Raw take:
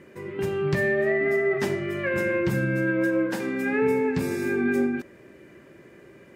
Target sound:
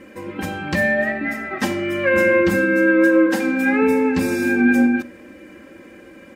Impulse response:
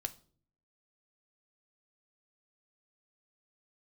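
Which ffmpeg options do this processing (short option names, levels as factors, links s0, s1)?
-filter_complex "[0:a]aecho=1:1:3.8:0.99,asplit=2[s0][s1];[1:a]atrim=start_sample=2205[s2];[s1][s2]afir=irnorm=-1:irlink=0,volume=0.891[s3];[s0][s3]amix=inputs=2:normalize=0"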